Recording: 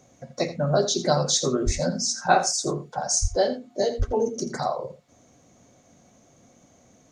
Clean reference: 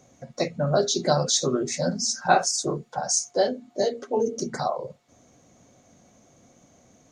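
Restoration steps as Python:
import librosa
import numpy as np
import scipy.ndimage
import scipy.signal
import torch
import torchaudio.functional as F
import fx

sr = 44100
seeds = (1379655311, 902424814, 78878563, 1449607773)

y = fx.fix_deplosive(x, sr, at_s=(1.65, 3.21, 3.98))
y = fx.fix_echo_inverse(y, sr, delay_ms=83, level_db=-13.0)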